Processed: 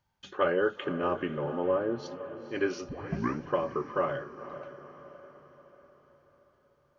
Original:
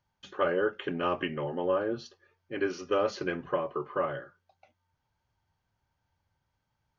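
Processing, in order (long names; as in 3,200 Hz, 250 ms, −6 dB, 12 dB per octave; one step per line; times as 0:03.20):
0:00.84–0:02.03: parametric band 3,100 Hz −10 dB 1.7 octaves
0:02.89: tape start 0.54 s
feedback delay with all-pass diffusion 491 ms, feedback 50%, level −12.5 dB
level +1 dB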